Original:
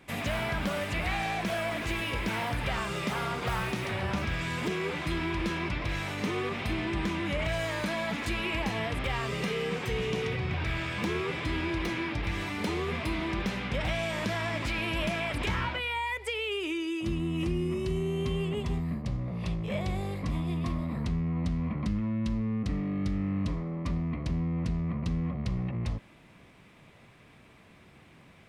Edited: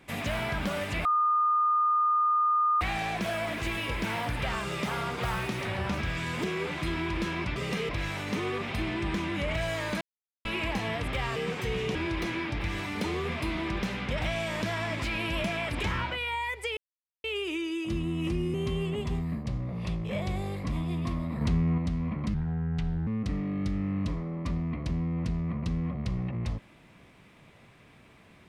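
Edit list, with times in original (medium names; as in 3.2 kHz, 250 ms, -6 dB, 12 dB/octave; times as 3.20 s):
1.05 s: add tone 1.22 kHz -21.5 dBFS 1.76 s
7.92–8.36 s: mute
9.27–9.60 s: move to 5.80 s
10.19–11.58 s: delete
16.40 s: insert silence 0.47 s
17.70–18.13 s: delete
21.00–21.37 s: gain +4.5 dB
21.93–22.47 s: speed 74%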